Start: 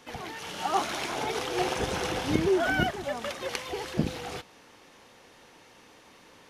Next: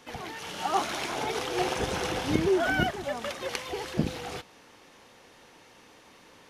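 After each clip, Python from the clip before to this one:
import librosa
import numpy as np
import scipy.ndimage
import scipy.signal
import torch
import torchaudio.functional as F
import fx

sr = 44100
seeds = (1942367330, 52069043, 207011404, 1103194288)

y = x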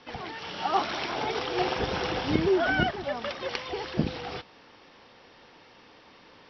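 y = scipy.signal.sosfilt(scipy.signal.cheby1(8, 1.0, 5600.0, 'lowpass', fs=sr, output='sos'), x)
y = y * librosa.db_to_amplitude(1.5)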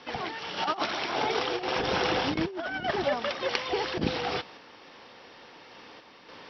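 y = fx.low_shelf(x, sr, hz=130.0, db=-9.5)
y = fx.over_compress(y, sr, threshold_db=-30.0, ratio=-0.5)
y = fx.tremolo_random(y, sr, seeds[0], hz=3.5, depth_pct=55)
y = y * librosa.db_to_amplitude(5.5)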